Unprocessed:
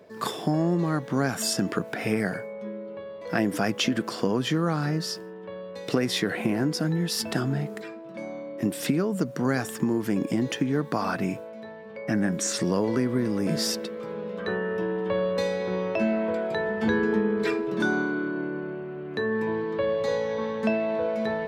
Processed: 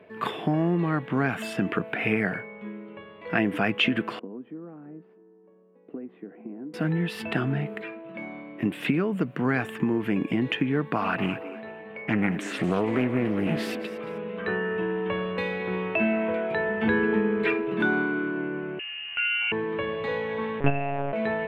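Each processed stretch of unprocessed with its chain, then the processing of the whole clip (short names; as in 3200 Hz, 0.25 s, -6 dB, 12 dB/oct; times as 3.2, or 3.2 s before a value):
4.19–6.74 CVSD 64 kbps + ladder band-pass 290 Hz, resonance 40% + low shelf 190 Hz -11.5 dB
10.95–14.18 high shelf 9000 Hz +7.5 dB + frequency-shifting echo 0.225 s, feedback 32%, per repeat +96 Hz, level -14.5 dB + Doppler distortion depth 0.29 ms
18.79–19.52 HPF 740 Hz 6 dB/oct + inverted band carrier 3200 Hz
20.6–21.13 high shelf 3100 Hz -11.5 dB + transient shaper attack +8 dB, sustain -4 dB + monotone LPC vocoder at 8 kHz 140 Hz
whole clip: resonant high shelf 3900 Hz -13.5 dB, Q 3; notch 550 Hz, Q 12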